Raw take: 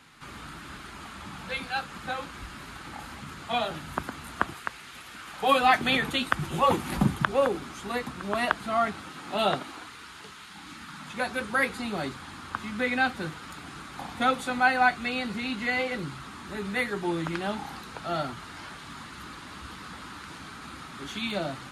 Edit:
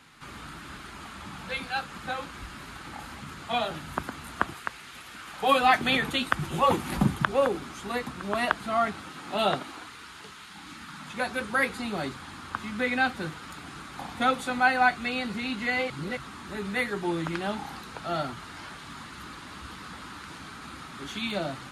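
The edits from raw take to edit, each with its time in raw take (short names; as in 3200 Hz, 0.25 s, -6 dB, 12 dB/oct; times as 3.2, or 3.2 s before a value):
15.9–16.17 reverse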